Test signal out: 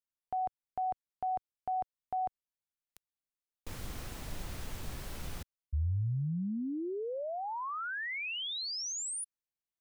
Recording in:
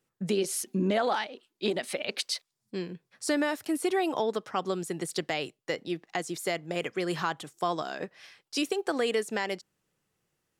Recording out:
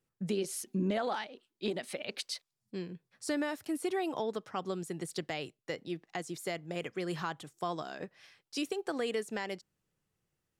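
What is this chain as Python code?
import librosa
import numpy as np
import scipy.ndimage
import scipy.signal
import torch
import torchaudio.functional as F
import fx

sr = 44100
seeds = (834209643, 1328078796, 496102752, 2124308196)

y = fx.low_shelf(x, sr, hz=140.0, db=10.0)
y = y * librosa.db_to_amplitude(-7.0)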